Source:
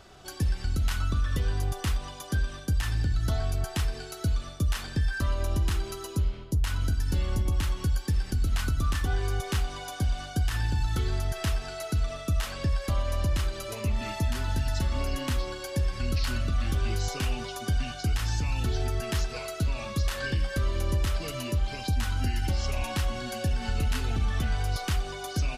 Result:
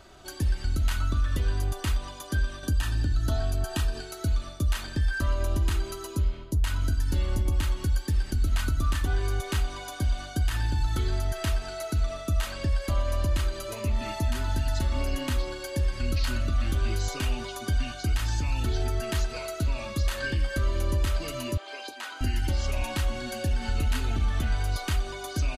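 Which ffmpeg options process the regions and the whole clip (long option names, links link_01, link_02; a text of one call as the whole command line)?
ffmpeg -i in.wav -filter_complex "[0:a]asettb=1/sr,asplit=3[link_01][link_02][link_03];[link_01]atrim=end=2.634[link_04];[link_02]atrim=start=2.63:end=4.01,asetpts=PTS-STARTPTS,afade=type=in:duration=0.004:curve=qsin,afade=type=out:start_time=1.376:duration=0.004:curve=qsin,equalizer=frequency=270:width_type=o:width=0.43:gain=3.5,acompressor=mode=upward:threshold=-30dB:ratio=2.5:attack=3.2:release=140:knee=2.83:detection=peak,asuperstop=centerf=2100:order=8:qfactor=6.7[link_05];[link_03]atrim=start=4.006[link_06];[link_04][link_05]acrossfade=duration=0.004:curve1=hsin:curve2=qsin[link_07];[link_07][link_06]acrossfade=duration=0.004:curve1=qsin:curve2=hsin,asettb=1/sr,asplit=3[link_08][link_09][link_10];[link_08]atrim=end=21.574[link_11];[link_09]atrim=start=21.57:end=22.21,asetpts=PTS-STARTPTS,afade=type=in:duration=0.004:curve=qsin,afade=type=out:start_time=0.636:duration=0.004:curve=qsin,highpass=frequency=400:width=0.5412,highpass=frequency=400:width=1.3066,highshelf=frequency=7000:gain=-10[link_12];[link_10]atrim=start=22.206[link_13];[link_11][link_12]acrossfade=duration=0.004:curve1=hsin:curve2=qsin[link_14];[link_14][link_13]acrossfade=duration=0.004:curve1=qsin:curve2=hsin,bandreject=frequency=5400:width=11,aecho=1:1:3.2:0.34" out.wav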